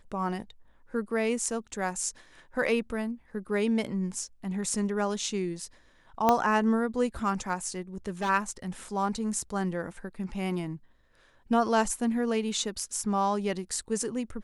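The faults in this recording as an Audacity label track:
6.290000	6.290000	pop -9 dBFS
8.070000	8.300000	clipped -26 dBFS

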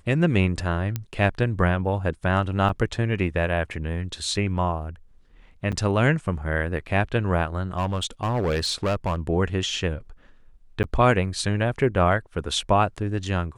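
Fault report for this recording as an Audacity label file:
0.960000	0.960000	pop -13 dBFS
2.690000	2.690000	dropout 3.1 ms
5.720000	5.730000	dropout 6.9 ms
7.740000	9.290000	clipped -19.5 dBFS
10.830000	10.840000	dropout 9.7 ms

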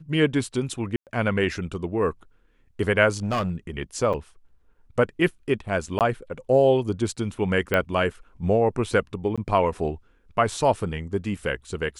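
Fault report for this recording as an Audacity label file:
0.960000	1.070000	dropout 108 ms
3.230000	3.510000	clipped -21 dBFS
4.130000	4.140000	dropout 6.4 ms
5.990000	6.010000	dropout 18 ms
7.740000	7.740000	pop -10 dBFS
9.360000	9.380000	dropout 16 ms

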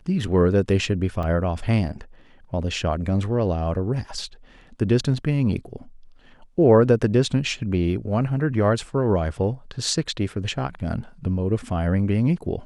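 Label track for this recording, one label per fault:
1.230000	1.230000	dropout 3.6 ms

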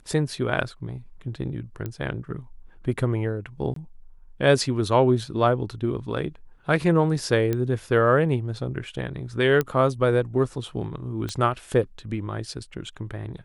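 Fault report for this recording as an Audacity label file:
1.860000	1.860000	pop -18 dBFS
3.740000	3.760000	dropout 23 ms
7.530000	7.530000	pop -13 dBFS
9.610000	9.610000	pop -11 dBFS
11.290000	11.290000	pop -16 dBFS

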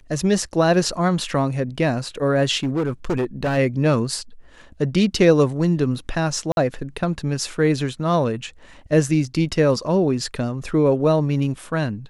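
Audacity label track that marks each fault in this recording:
2.630000	3.580000	clipped -17.5 dBFS
6.520000	6.570000	dropout 51 ms

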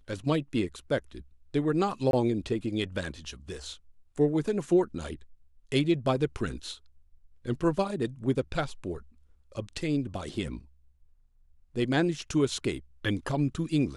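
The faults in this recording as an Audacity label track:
2.110000	2.130000	dropout 22 ms

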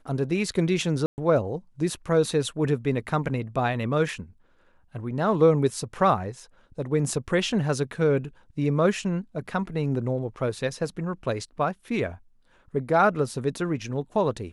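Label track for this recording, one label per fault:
1.060000	1.180000	dropout 119 ms

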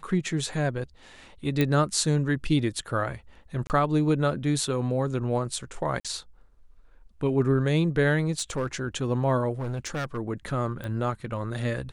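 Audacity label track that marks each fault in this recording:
1.610000	1.610000	pop -11 dBFS
3.670000	3.700000	dropout 29 ms
6.000000	6.050000	dropout 46 ms
8.310000	8.820000	clipped -22.5 dBFS
9.590000	10.180000	clipped -27 dBFS
10.840000	10.840000	pop -22 dBFS

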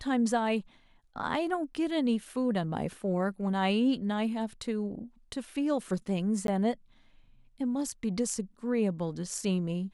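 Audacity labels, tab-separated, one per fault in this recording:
6.470000	6.480000	dropout 12 ms

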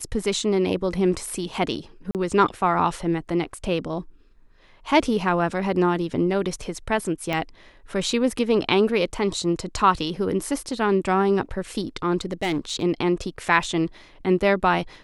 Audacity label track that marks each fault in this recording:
2.110000	2.150000	dropout 38 ms
7.330000	7.330000	pop -12 dBFS
12.210000	12.830000	clipped -20 dBFS

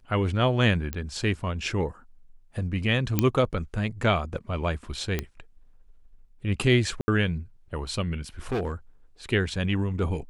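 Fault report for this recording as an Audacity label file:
0.930000	0.930000	pop -16 dBFS
3.190000	3.190000	pop -7 dBFS
5.190000	5.190000	pop -13 dBFS
7.010000	7.080000	dropout 70 ms
8.520000	8.730000	clipped -23.5 dBFS

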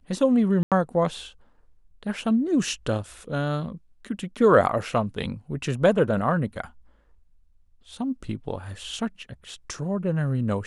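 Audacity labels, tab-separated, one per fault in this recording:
0.630000	0.720000	dropout 87 ms

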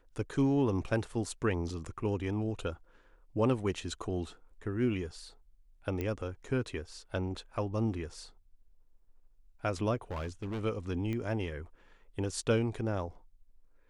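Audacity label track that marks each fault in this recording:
6.010000	6.010000	pop -22 dBFS
10.110000	10.620000	clipped -33.5 dBFS
11.130000	11.130000	pop -25 dBFS

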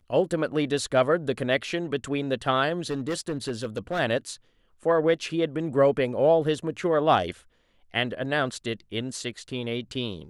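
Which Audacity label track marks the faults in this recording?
2.900000	4.000000	clipped -23.5 dBFS

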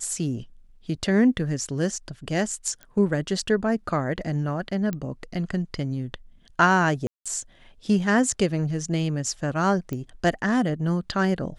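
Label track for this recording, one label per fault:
2.830000	2.830000	pop -24 dBFS
4.930000	4.930000	pop -17 dBFS
7.070000	7.260000	dropout 186 ms
9.930000	9.930000	pop -18 dBFS

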